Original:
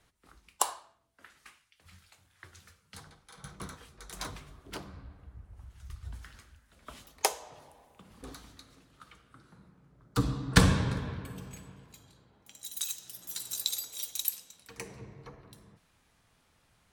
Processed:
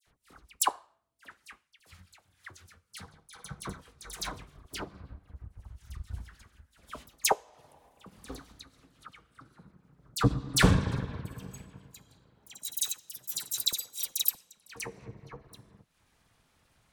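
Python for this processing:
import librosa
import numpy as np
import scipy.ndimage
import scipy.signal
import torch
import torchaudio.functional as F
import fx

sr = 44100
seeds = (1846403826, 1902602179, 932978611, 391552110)

y = np.clip(10.0 ** (18.5 / 20.0) * x, -1.0, 1.0) / 10.0 ** (18.5 / 20.0)
y = fx.transient(y, sr, attack_db=6, sustain_db=-9)
y = fx.dispersion(y, sr, late='lows', ms=68.0, hz=2100.0)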